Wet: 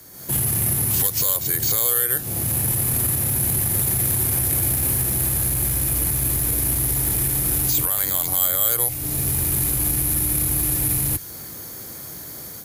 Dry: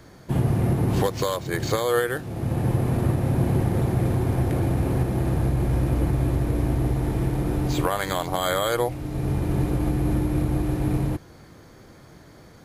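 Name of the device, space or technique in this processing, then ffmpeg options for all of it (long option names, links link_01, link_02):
FM broadcast chain: -filter_complex "[0:a]highpass=54,dynaudnorm=framelen=120:gausssize=3:maxgain=10dB,acrossover=split=120|1300[link_01][link_02][link_03];[link_01]acompressor=threshold=-19dB:ratio=4[link_04];[link_02]acompressor=threshold=-27dB:ratio=4[link_05];[link_03]acompressor=threshold=-28dB:ratio=4[link_06];[link_04][link_05][link_06]amix=inputs=3:normalize=0,aemphasis=mode=production:type=50fm,alimiter=limit=-12.5dB:level=0:latency=1:release=15,asoftclip=type=hard:threshold=-16dB,lowpass=frequency=15000:width=0.5412,lowpass=frequency=15000:width=1.3066,aemphasis=mode=production:type=50fm,volume=-4.5dB"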